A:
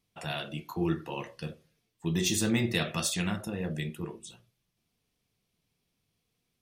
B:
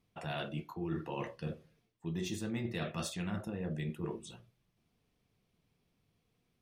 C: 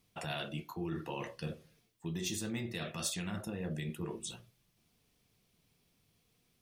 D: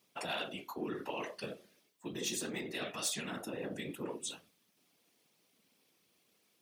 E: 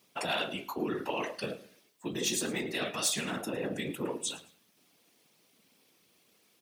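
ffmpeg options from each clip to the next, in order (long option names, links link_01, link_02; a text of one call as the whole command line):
ffmpeg -i in.wav -af "highshelf=frequency=3000:gain=-11.5,areverse,acompressor=threshold=-39dB:ratio=6,areverse,volume=4dB" out.wav
ffmpeg -i in.wav -af "alimiter=level_in=7dB:limit=-24dB:level=0:latency=1:release=260,volume=-7dB,highshelf=frequency=3300:gain=11,volume=1.5dB" out.wav
ffmpeg -i in.wav -af "afftfilt=real='hypot(re,im)*cos(2*PI*random(0))':imag='hypot(re,im)*sin(2*PI*random(1))':win_size=512:overlap=0.75,highpass=280,aeval=exprs='0.0376*sin(PI/2*1.41*val(0)/0.0376)':channel_layout=same,volume=1.5dB" out.wav
ffmpeg -i in.wav -af "aecho=1:1:109|218:0.119|0.0333,volume=6dB" out.wav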